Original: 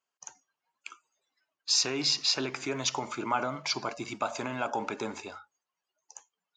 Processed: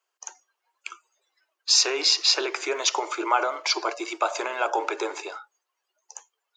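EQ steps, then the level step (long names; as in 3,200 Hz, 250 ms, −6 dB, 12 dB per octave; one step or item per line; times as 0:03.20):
Chebyshev high-pass filter 330 Hz, order 6
+7.5 dB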